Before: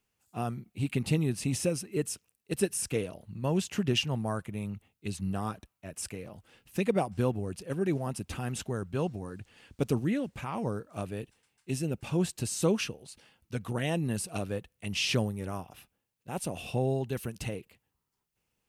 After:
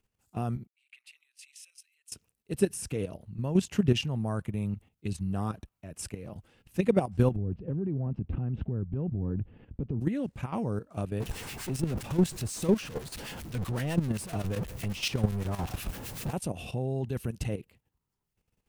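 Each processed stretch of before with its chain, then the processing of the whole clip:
0.67–2.12 s: compression 2:1, threshold -40 dBFS + ladder high-pass 1.9 kHz, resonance 35% + three bands expanded up and down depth 100%
7.36–10.01 s: low-pass 3.1 kHz 24 dB/octave + tilt shelf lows +10 dB, about 640 Hz + compression 4:1, threshold -32 dBFS
11.20–16.33 s: jump at every zero crossing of -29.5 dBFS + harmonic tremolo 7.9 Hz, crossover 1.4 kHz
whole clip: tilt EQ -2 dB/octave; level held to a coarse grid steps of 11 dB; treble shelf 4.8 kHz +5 dB; trim +2.5 dB

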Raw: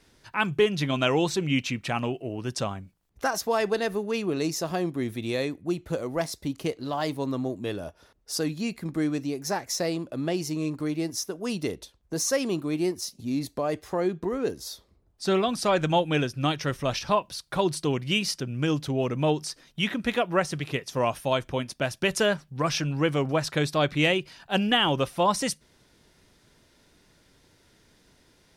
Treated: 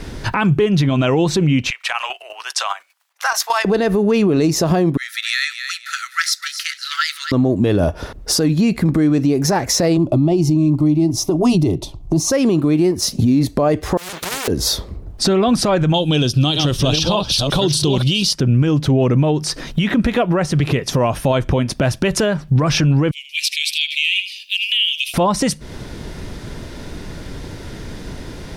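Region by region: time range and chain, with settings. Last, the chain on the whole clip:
1.70–3.65 s: Bessel high-pass 1.4 kHz, order 6 + square tremolo 10 Hz, depth 60%, duty 25%
4.97–7.32 s: rippled Chebyshev high-pass 1.3 kHz, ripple 6 dB + feedback delay 255 ms, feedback 31%, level -12.5 dB
9.97–12.32 s: tilt EQ -1.5 dB/octave + static phaser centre 320 Hz, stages 8
13.97–14.48 s: comb filter that takes the minimum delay 2.2 ms + high-pass 1.1 kHz + spectrum-flattening compressor 10:1
15.94–18.33 s: chunks repeated in reverse 611 ms, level -7.5 dB + resonant high shelf 2.6 kHz +8.5 dB, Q 3
23.11–25.14 s: steep high-pass 2.4 kHz 72 dB/octave + peaking EQ 6.5 kHz -8.5 dB 1.5 oct + delay 79 ms -14.5 dB
whole clip: tilt EQ -2 dB/octave; compression 12:1, threshold -34 dBFS; loudness maximiser +32.5 dB; trim -6.5 dB

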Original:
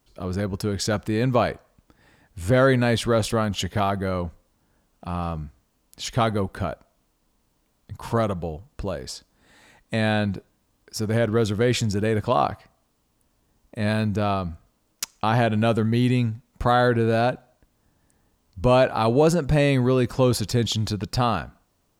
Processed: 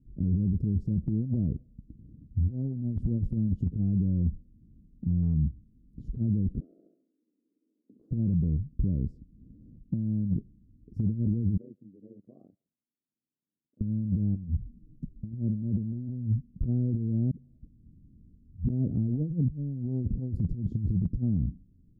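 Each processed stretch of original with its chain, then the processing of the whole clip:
6.60–8.11 s: steep high-pass 310 Hz + flutter echo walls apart 11.7 m, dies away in 0.54 s + compression 8:1, threshold -41 dBFS
11.57–13.81 s: AM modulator 95 Hz, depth 95% + ladder band-pass 940 Hz, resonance 20%
14.35–15.32 s: touch-sensitive flanger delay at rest 8.7 ms, full sweep at -23.5 dBFS + tilt shelf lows +10 dB, about 1.1 kHz
17.31–18.70 s: slow attack 246 ms + phase dispersion highs, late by 143 ms, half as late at 810 Hz
whole clip: inverse Chebyshev low-pass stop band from 850 Hz, stop band 60 dB; compressor with a negative ratio -30 dBFS, ratio -0.5; peak limiter -25.5 dBFS; trim +6.5 dB

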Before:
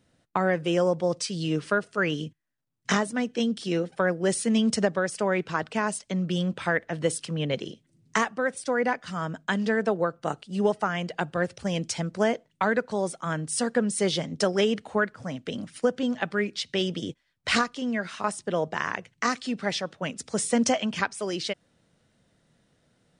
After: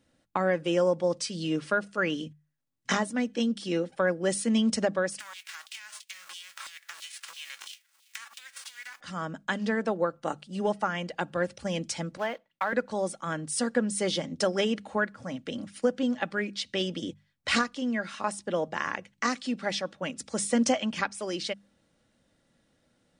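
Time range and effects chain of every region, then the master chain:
5.19–8.99 s: formants flattened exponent 0.3 + compression 16:1, threshold -36 dBFS + LFO high-pass saw down 3 Hz 1–3.5 kHz
12.17–12.73 s: block-companded coder 5-bit + three-band isolator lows -13 dB, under 590 Hz, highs -19 dB, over 4.1 kHz
whole clip: hum notches 50/100/150/200 Hz; comb 3.6 ms, depth 34%; trim -2.5 dB

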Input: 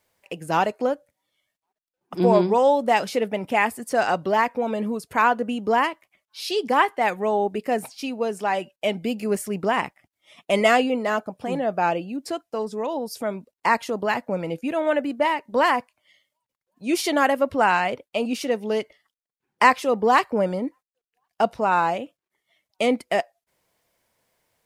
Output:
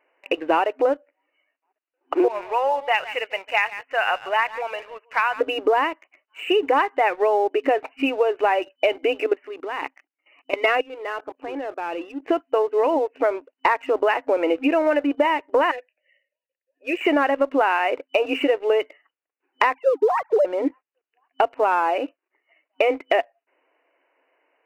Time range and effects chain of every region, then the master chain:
2.28–5.41 s: amplifier tone stack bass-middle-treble 10-0-10 + delay 146 ms -17.5 dB
9.26–12.22 s: peaking EQ 640 Hz -6.5 dB 0.39 oct + level held to a coarse grid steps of 20 dB
15.71–17.01 s: vowel filter e + treble shelf 3.9 kHz +11.5 dB
19.74–20.45 s: formants replaced by sine waves + steep high-pass 260 Hz 72 dB/octave + tilt EQ -3.5 dB/octave
whole clip: FFT band-pass 260–3000 Hz; compression 10:1, threshold -28 dBFS; waveshaping leveller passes 1; trim +8.5 dB

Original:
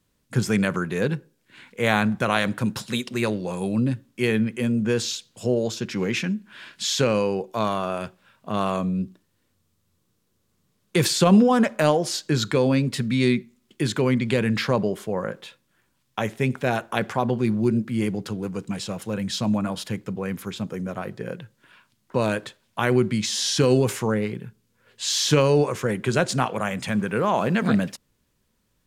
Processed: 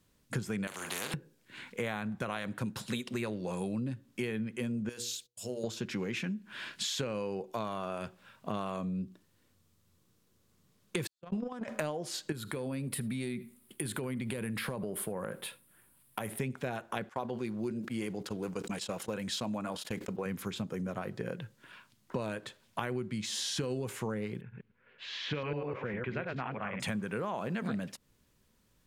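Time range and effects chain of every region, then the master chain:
0.67–1.14 s: high-pass 330 Hz + doubling 42 ms -10.5 dB + spectrum-flattening compressor 4:1
4.89–5.64 s: pre-emphasis filter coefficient 0.8 + gate -58 dBFS, range -26 dB + hum notches 60/120/180/240/300/360/420/480 Hz
11.07–11.68 s: gate -12 dBFS, range -57 dB + treble shelf 10 kHz -10.5 dB + decay stretcher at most 42 dB/s
12.32–16.39 s: resonant high shelf 8 kHz +9.5 dB, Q 3 + compression 4:1, threshold -28 dBFS + delay 75 ms -24 dB
17.09–20.26 s: gate -33 dBFS, range -23 dB + tone controls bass -9 dB, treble +1 dB + decay stretcher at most 100 dB/s
24.41–26.80 s: chunks repeated in reverse 102 ms, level -2 dB + four-pole ladder low-pass 2.8 kHz, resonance 40%
whole clip: dynamic bell 5.5 kHz, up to -5 dB, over -42 dBFS, Q 1.7; compression 6:1, threshold -33 dBFS

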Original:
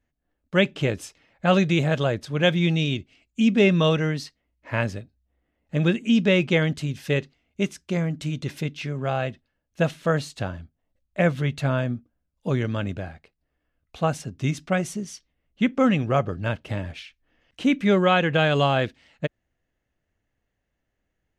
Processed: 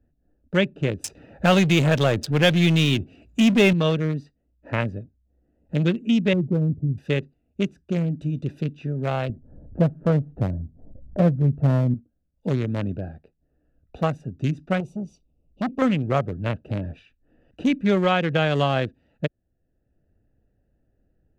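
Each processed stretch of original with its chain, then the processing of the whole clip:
1.04–3.73 s: high-pass 50 Hz + treble shelf 3 kHz +9 dB + power-law waveshaper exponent 0.7
6.33–6.98 s: Gaussian low-pass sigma 15 samples + peaking EQ 100 Hz +8 dB 0.89 oct
9.29–11.94 s: low-pass 1.1 kHz 24 dB/octave + bass shelf 240 Hz +9 dB + upward compressor, threshold -27 dBFS
14.80–15.82 s: Butterworth band-stop 1.7 kHz, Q 1.3 + transformer saturation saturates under 1.2 kHz
whole clip: local Wiener filter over 41 samples; three bands compressed up and down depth 40%

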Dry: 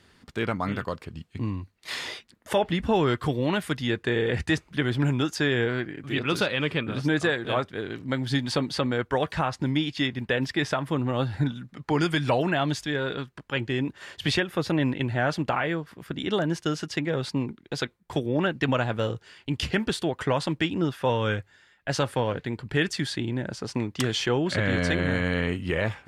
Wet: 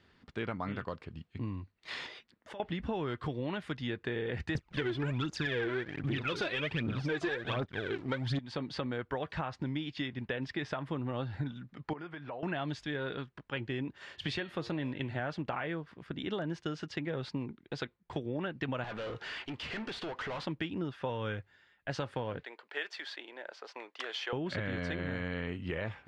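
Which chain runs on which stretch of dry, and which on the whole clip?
2.06–2.60 s: bass shelf 150 Hz -6 dB + compression 10:1, threshold -36 dBFS
4.55–8.39 s: phaser 1.3 Hz, delay 3.1 ms, feedback 70% + waveshaping leveller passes 2
11.93–12.43 s: low-pass 1.1 kHz + tilt EQ +4 dB/octave + compression 2.5:1, threshold -35 dBFS
13.94–15.20 s: treble shelf 4.8 kHz +6.5 dB + de-hum 116.2 Hz, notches 38
18.84–20.45 s: compression 3:1, threshold -41 dBFS + overdrive pedal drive 30 dB, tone 4.7 kHz, clips at -24.5 dBFS
22.43–24.33 s: median filter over 5 samples + high-pass 510 Hz 24 dB/octave
whole clip: compression, threshold -25 dBFS; low-pass 4.1 kHz 12 dB/octave; trim -6.5 dB

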